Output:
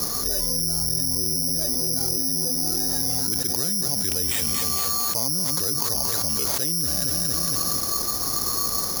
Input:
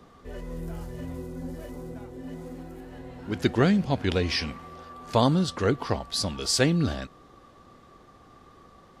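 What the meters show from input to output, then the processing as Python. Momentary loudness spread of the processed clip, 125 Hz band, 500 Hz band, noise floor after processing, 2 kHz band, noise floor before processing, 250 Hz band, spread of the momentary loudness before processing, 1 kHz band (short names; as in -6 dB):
1 LU, -4.5 dB, -5.5 dB, -26 dBFS, -4.0 dB, -54 dBFS, -4.5 dB, 20 LU, 0.0 dB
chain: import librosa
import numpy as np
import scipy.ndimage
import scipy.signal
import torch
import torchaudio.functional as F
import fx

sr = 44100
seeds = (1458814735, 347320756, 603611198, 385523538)

y = fx.noise_reduce_blind(x, sr, reduce_db=7)
y = scipy.signal.sosfilt(scipy.signal.butter(2, 2300.0, 'lowpass', fs=sr, output='sos'), y)
y = fx.echo_feedback(y, sr, ms=229, feedback_pct=37, wet_db=-14)
y = (np.kron(y[::8], np.eye(8)[0]) * 8)[:len(y)]
y = fx.env_flatten(y, sr, amount_pct=100)
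y = y * 10.0 ** (-15.0 / 20.0)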